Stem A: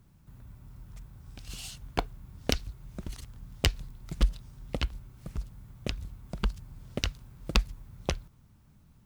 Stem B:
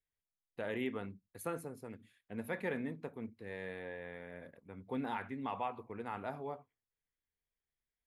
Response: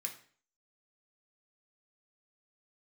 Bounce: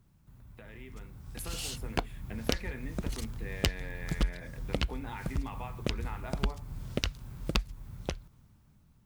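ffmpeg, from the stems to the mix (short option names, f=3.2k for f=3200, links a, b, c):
-filter_complex "[0:a]acompressor=threshold=-37dB:ratio=2.5,volume=-4.5dB[a];[1:a]equalizer=f=520:w=1.5:g=-4,acompressor=threshold=-50dB:ratio=6,volume=-2.5dB,asplit=2[b][c];[c]volume=-1dB[d];[2:a]atrim=start_sample=2205[e];[d][e]afir=irnorm=-1:irlink=0[f];[a][b][f]amix=inputs=3:normalize=0,dynaudnorm=f=210:g=13:m=11.5dB"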